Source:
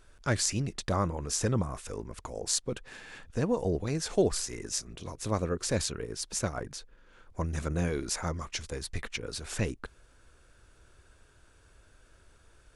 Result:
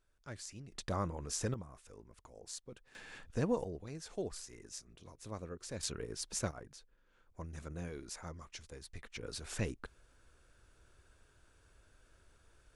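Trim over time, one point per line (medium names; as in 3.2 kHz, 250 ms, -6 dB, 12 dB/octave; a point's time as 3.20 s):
-19 dB
from 0.72 s -7.5 dB
from 1.54 s -17 dB
from 2.95 s -4.5 dB
from 3.64 s -14.5 dB
from 5.83 s -5.5 dB
from 6.51 s -13.5 dB
from 9.16 s -6 dB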